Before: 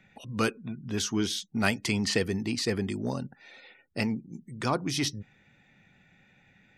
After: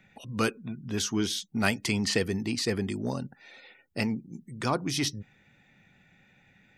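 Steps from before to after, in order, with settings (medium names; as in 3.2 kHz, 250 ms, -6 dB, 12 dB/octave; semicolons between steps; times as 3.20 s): treble shelf 12 kHz +5 dB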